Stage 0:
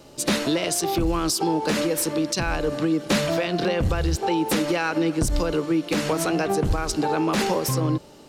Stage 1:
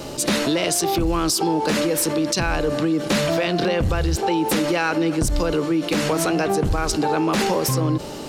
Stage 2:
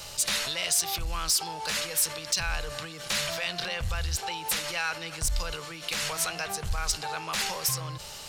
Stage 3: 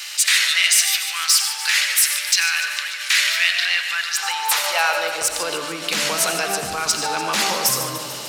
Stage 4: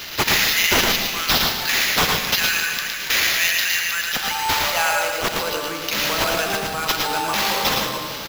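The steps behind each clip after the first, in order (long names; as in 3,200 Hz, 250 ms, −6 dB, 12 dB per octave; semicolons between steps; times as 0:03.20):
envelope flattener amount 50%
guitar amp tone stack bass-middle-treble 10-0-10; soft clipping −16.5 dBFS, distortion −19 dB
high-pass filter sweep 1,900 Hz → 250 Hz, 0:03.88–0:05.72; feedback echo with a high-pass in the loop 147 ms, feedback 67%, level −12 dB; on a send at −5.5 dB: convolution reverb RT60 1.2 s, pre-delay 45 ms; on the sum: level +8.5 dB
in parallel at −6 dB: hard clipping −18.5 dBFS, distortion −8 dB; on the sum: sample-rate reduction 8,900 Hz, jitter 0%; single-tap delay 112 ms −4 dB; level −4.5 dB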